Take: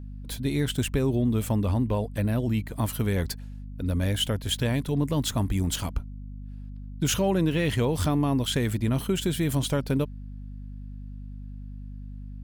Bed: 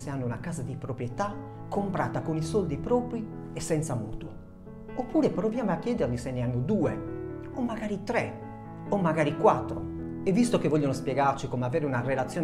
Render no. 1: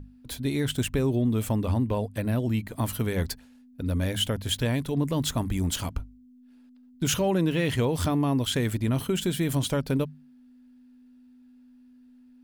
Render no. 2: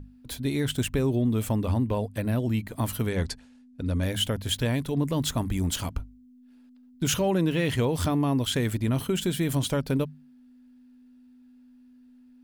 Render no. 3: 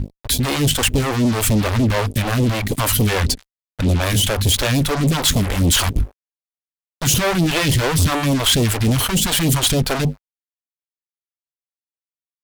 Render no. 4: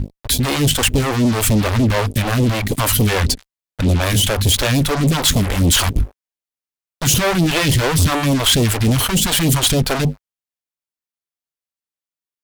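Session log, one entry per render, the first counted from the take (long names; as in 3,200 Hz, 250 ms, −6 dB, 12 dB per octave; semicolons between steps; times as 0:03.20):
mains-hum notches 50/100/150/200 Hz
0:03.09–0:04.03: low-pass filter 9,500 Hz 24 dB per octave
fuzz pedal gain 38 dB, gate −46 dBFS; all-pass phaser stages 2, 3.4 Hz, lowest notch 150–1,500 Hz
level +1.5 dB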